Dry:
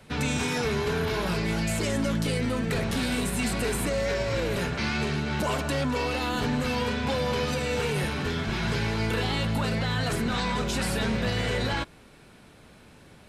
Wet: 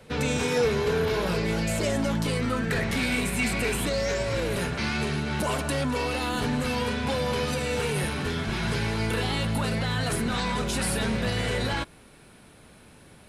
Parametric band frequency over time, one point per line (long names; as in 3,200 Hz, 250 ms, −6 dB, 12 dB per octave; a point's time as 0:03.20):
parametric band +10 dB 0.3 octaves
0:01.65 490 Hz
0:03.00 2,300 Hz
0:03.68 2,300 Hz
0:04.30 10,000 Hz